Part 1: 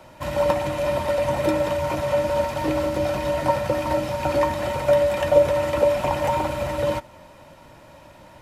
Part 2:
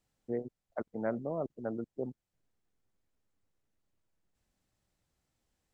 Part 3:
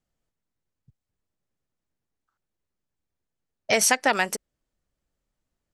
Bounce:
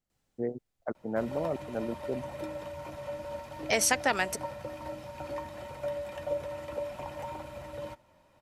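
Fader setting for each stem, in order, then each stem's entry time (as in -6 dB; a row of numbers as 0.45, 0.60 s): -17.0, +2.5, -5.5 dB; 0.95, 0.10, 0.00 s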